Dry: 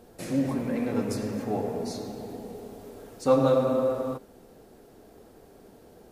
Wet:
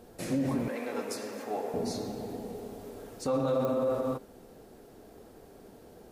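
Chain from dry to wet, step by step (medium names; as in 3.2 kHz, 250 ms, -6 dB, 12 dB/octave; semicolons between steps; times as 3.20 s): 0.68–1.74 s: Bessel high-pass 560 Hz, order 2; peak limiter -21 dBFS, peak gain reduction 11 dB; clicks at 3.65 s, -22 dBFS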